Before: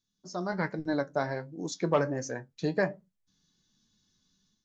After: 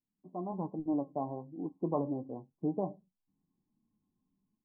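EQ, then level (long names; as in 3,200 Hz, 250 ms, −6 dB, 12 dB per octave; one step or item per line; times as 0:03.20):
Chebyshev low-pass with heavy ripple 1,100 Hz, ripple 9 dB
0.0 dB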